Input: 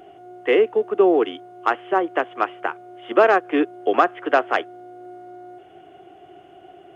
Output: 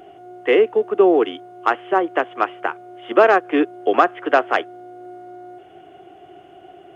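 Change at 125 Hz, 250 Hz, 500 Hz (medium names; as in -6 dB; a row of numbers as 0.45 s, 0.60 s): no reading, +2.0 dB, +2.0 dB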